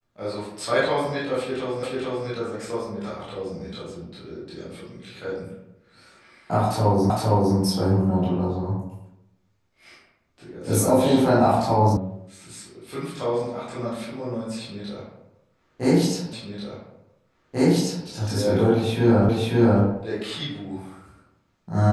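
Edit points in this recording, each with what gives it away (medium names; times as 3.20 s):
1.83 s: repeat of the last 0.44 s
7.10 s: repeat of the last 0.46 s
11.97 s: sound stops dead
16.33 s: repeat of the last 1.74 s
19.29 s: repeat of the last 0.54 s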